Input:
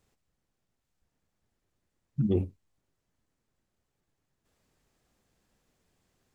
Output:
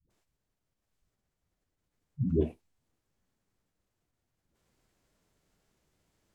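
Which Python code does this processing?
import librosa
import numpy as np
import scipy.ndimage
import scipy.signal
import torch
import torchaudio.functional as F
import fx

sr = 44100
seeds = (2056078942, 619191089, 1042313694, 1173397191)

y = fx.dispersion(x, sr, late='highs', ms=103.0, hz=360.0)
y = fx.pitch_keep_formants(y, sr, semitones=-3.0)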